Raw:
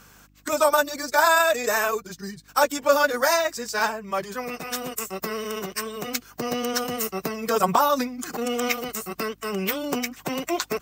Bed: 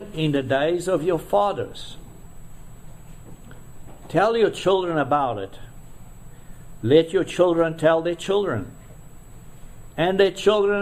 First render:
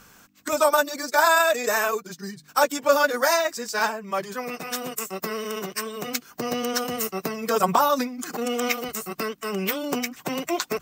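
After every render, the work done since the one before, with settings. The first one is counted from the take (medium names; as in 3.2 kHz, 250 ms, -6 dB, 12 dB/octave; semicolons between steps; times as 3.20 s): de-hum 50 Hz, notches 3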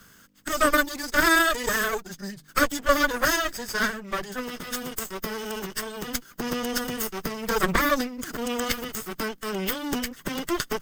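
comb filter that takes the minimum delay 0.61 ms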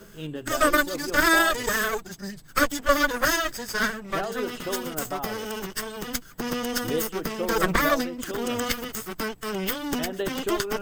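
add bed -13 dB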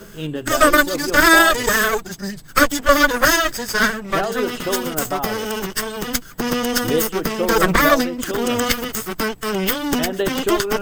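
trim +8 dB; peak limiter -1 dBFS, peak gain reduction 2 dB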